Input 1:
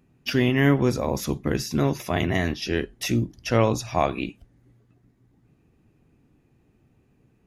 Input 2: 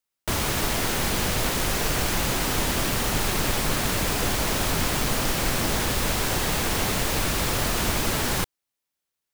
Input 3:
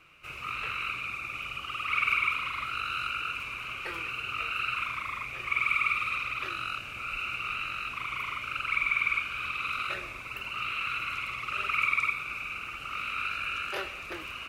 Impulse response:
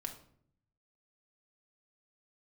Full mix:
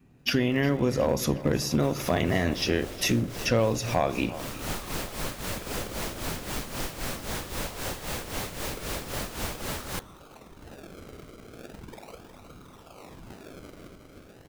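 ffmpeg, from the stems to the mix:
-filter_complex "[0:a]acompressor=threshold=-24dB:ratio=10,volume=1.5dB,asplit=4[link_01][link_02][link_03][link_04];[link_02]volume=-9.5dB[link_05];[link_03]volume=-15.5dB[link_06];[1:a]tremolo=f=3.8:d=0.71,adelay=1550,volume=-7dB[link_07];[2:a]highpass=630,alimiter=limit=-20.5dB:level=0:latency=1:release=401,acrusher=samples=34:mix=1:aa=0.000001:lfo=1:lforange=34:lforate=0.38,adelay=50,volume=-12dB,asplit=2[link_08][link_09];[link_09]volume=-8dB[link_10];[link_04]apad=whole_len=480086[link_11];[link_07][link_11]sidechaincompress=threshold=-35dB:ratio=8:attack=5.8:release=349[link_12];[3:a]atrim=start_sample=2205[link_13];[link_05][link_13]afir=irnorm=-1:irlink=0[link_14];[link_06][link_10]amix=inputs=2:normalize=0,aecho=0:1:361|722|1083|1444|1805|2166|2527|2888:1|0.52|0.27|0.141|0.0731|0.038|0.0198|0.0103[link_15];[link_01][link_12][link_08][link_14][link_15]amix=inputs=5:normalize=0,adynamicequalizer=threshold=0.00562:dfrequency=540:dqfactor=4:tfrequency=540:tqfactor=4:attack=5:release=100:ratio=0.375:range=3:mode=boostabove:tftype=bell,asoftclip=type=hard:threshold=-14.5dB"

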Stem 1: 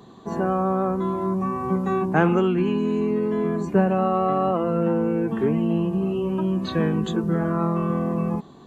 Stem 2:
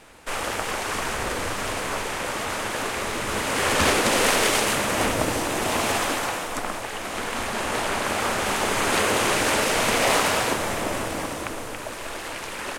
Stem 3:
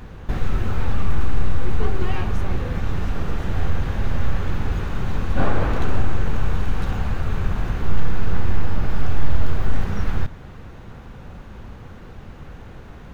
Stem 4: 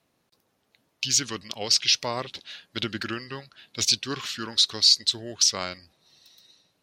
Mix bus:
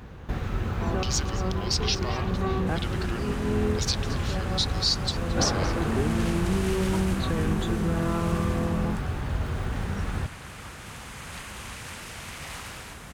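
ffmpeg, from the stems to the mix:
ffmpeg -i stem1.wav -i stem2.wav -i stem3.wav -i stem4.wav -filter_complex "[0:a]alimiter=limit=-17.5dB:level=0:latency=1,adelay=550,volume=-2.5dB[link_01];[1:a]highpass=1100,adelay=2400,volume=-16.5dB[link_02];[2:a]highpass=45,volume=-3.5dB[link_03];[3:a]volume=-7dB,asplit=3[link_04][link_05][link_06];[link_05]volume=-17dB[link_07];[link_06]apad=whole_len=406386[link_08];[link_01][link_08]sidechaincompress=threshold=-45dB:ratio=8:attack=16:release=146[link_09];[link_07]aecho=0:1:224:1[link_10];[link_09][link_02][link_03][link_04][link_10]amix=inputs=5:normalize=0" out.wav

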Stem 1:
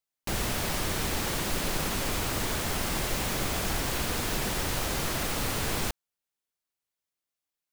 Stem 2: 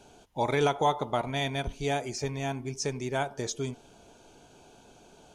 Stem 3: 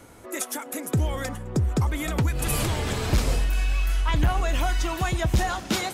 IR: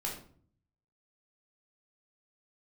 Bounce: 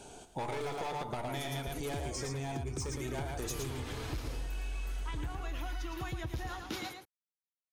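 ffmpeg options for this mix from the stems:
-filter_complex "[1:a]equalizer=frequency=8500:width_type=o:width=0.36:gain=11.5,asoftclip=type=hard:threshold=-27.5dB,volume=2.5dB,asplit=3[link_01][link_02][link_03];[link_02]volume=-15.5dB[link_04];[link_03]volume=-9.5dB[link_05];[2:a]equalizer=frequency=200:width_type=o:width=0.33:gain=-11,equalizer=frequency=315:width_type=o:width=0.33:gain=5,equalizer=frequency=630:width_type=o:width=0.33:gain=-6,equalizer=frequency=8000:width_type=o:width=0.33:gain=-12,adelay=1000,volume=-11.5dB,asplit=2[link_06][link_07];[link_07]volume=-7.5dB[link_08];[link_01]acompressor=threshold=-36dB:ratio=6,volume=0dB[link_09];[3:a]atrim=start_sample=2205[link_10];[link_04][link_10]afir=irnorm=-1:irlink=0[link_11];[link_05][link_08]amix=inputs=2:normalize=0,aecho=0:1:113:1[link_12];[link_06][link_09][link_11][link_12]amix=inputs=4:normalize=0,acompressor=threshold=-34dB:ratio=6"

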